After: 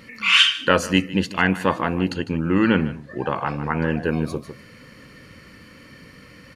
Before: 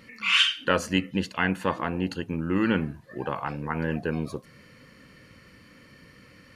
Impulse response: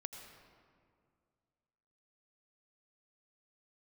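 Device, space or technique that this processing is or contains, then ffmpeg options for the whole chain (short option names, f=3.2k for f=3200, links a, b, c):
ducked delay: -filter_complex "[0:a]asettb=1/sr,asplit=3[a][b][c];[a]atrim=end=2.124[d];[b]atrim=start=2.12:end=4.04,asetpts=PTS-STARTPTS,afade=t=in:d=0.004:c=qsin,afade=t=out:st=1.916:d=0.004:c=qsin,lowpass=8.6k[e];[c]atrim=start=4.036[f];[d][e]acrossfade=d=0.004:c1=hsin:c2=qsin[g];[g][f]acrossfade=d=0.004:c1=qsin:c2=hsin,asplit=3[h][i][j];[i]adelay=152,volume=-7dB[k];[j]apad=whole_len=295794[l];[k][l]sidechaincompress=threshold=-26dB:ratio=8:attack=5.4:release=968[m];[h][m]amix=inputs=2:normalize=0,volume=6dB"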